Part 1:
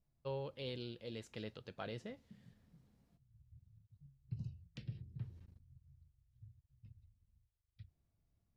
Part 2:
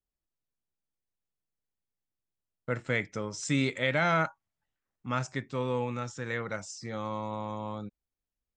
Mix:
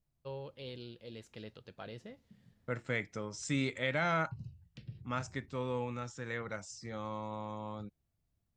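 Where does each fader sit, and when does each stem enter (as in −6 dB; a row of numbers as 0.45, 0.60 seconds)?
−1.5, −5.5 decibels; 0.00, 0.00 seconds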